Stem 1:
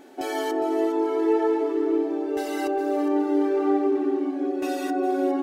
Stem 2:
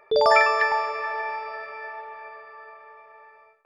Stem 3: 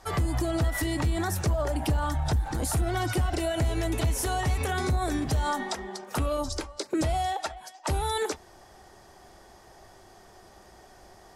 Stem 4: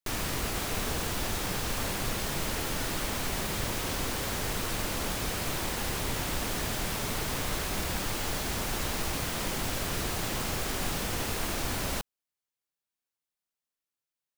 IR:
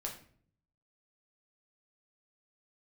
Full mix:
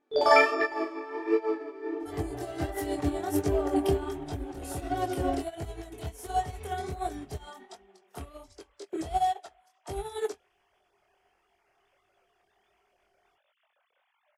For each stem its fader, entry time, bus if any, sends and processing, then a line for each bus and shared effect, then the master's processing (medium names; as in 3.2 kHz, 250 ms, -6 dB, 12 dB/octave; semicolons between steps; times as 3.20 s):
+2.5 dB, 0.00 s, no send, treble shelf 10 kHz -10.5 dB
+2.0 dB, 0.00 s, no send, none
+2.5 dB, 2.00 s, no send, treble shelf 8.1 kHz +5.5 dB; small resonant body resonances 410/710/3200 Hz, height 13 dB, ringing for 65 ms
-13.0 dB, 2.40 s, no send, formants replaced by sine waves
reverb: none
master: chorus 1.4 Hz, delay 20 ms, depth 5.8 ms; upward expansion 2.5:1, over -33 dBFS